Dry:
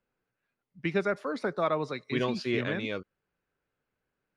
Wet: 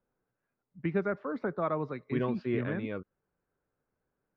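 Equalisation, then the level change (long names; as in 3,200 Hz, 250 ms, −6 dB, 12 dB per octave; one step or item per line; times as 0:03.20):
low-pass filter 1,300 Hz 12 dB per octave
dynamic equaliser 620 Hz, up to −5 dB, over −41 dBFS, Q 0.74
+1.5 dB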